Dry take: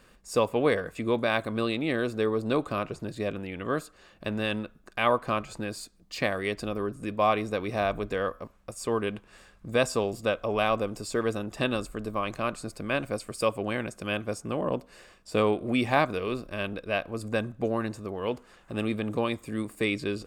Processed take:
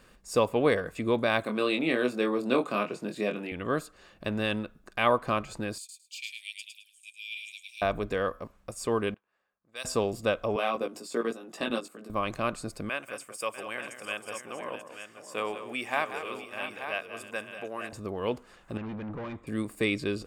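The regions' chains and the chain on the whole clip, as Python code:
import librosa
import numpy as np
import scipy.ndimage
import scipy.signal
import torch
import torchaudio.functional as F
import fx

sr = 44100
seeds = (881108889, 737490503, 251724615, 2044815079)

y = fx.chain(x, sr, fx.highpass(hz=180.0, slope=24),
    fx.peak_eq(hz=2500.0, db=4.5, octaves=0.32),
    fx.doubler(ms=24.0, db=-5.0), at=(1.43, 3.52))
y = fx.chain(y, sr, fx.cheby_ripple_highpass(hz=2300.0, ripple_db=6),
    fx.echo_feedback(ms=107, feedback_pct=18, wet_db=-4), at=(5.78, 7.82))
y = fx.chain(y, sr, fx.env_lowpass(base_hz=750.0, full_db=-23.5),
    fx.differentiator(), at=(9.14, 9.85))
y = fx.chain(y, sr, fx.steep_highpass(hz=190.0, slope=36),
    fx.level_steps(step_db=15),
    fx.doubler(ms=17.0, db=-3.5), at=(10.56, 12.1))
y = fx.chain(y, sr, fx.highpass(hz=1400.0, slope=6),
    fx.peak_eq(hz=4200.0, db=-13.0, octaves=0.38),
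    fx.echo_multitap(ms=(187, 644, 885), db=(-11.0, -12.5, -9.5)), at=(12.89, 17.93))
y = fx.chain(y, sr, fx.overload_stage(gain_db=35.0),
    fx.lowpass(hz=2000.0, slope=12), at=(18.77, 19.47))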